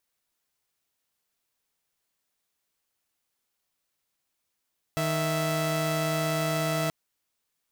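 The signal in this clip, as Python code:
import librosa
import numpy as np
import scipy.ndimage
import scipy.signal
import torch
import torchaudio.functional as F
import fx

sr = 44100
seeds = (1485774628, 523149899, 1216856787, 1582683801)

y = fx.chord(sr, length_s=1.93, notes=(51, 76), wave='saw', level_db=-25.5)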